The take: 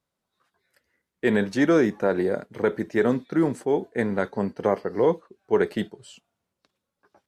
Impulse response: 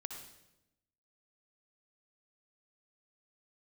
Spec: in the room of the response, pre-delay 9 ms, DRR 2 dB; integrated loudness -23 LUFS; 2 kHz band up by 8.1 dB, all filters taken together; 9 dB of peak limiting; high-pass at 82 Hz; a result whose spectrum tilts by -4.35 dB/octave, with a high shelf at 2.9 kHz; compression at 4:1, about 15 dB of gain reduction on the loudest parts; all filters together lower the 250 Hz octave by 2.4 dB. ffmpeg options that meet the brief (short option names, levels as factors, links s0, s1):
-filter_complex "[0:a]highpass=82,equalizer=f=250:t=o:g=-3.5,equalizer=f=2000:t=o:g=7,highshelf=f=2900:g=8.5,acompressor=threshold=0.02:ratio=4,alimiter=level_in=1.33:limit=0.0631:level=0:latency=1,volume=0.75,asplit=2[s0][s1];[1:a]atrim=start_sample=2205,adelay=9[s2];[s1][s2]afir=irnorm=-1:irlink=0,volume=1[s3];[s0][s3]amix=inputs=2:normalize=0,volume=5.01"